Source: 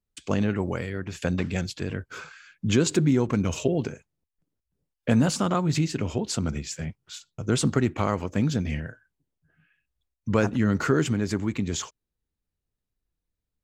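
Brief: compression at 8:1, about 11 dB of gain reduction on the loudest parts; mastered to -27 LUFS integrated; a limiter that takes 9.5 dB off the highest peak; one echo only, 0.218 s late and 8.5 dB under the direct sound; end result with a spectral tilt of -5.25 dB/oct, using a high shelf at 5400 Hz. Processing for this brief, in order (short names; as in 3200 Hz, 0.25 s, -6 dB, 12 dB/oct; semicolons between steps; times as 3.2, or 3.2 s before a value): high shelf 5400 Hz -3.5 dB; compressor 8:1, threshold -28 dBFS; limiter -23 dBFS; echo 0.218 s -8.5 dB; gain +8 dB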